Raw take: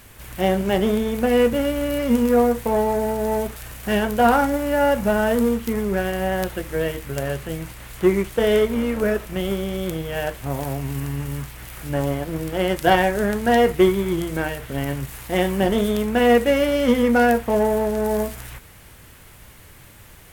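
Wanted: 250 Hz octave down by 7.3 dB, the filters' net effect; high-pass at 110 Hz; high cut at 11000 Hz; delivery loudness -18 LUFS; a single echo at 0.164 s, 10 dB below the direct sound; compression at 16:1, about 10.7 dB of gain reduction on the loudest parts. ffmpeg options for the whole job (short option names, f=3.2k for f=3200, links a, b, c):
-af "highpass=110,lowpass=11k,equalizer=f=250:t=o:g=-9,acompressor=threshold=-23dB:ratio=16,aecho=1:1:164:0.316,volume=10.5dB"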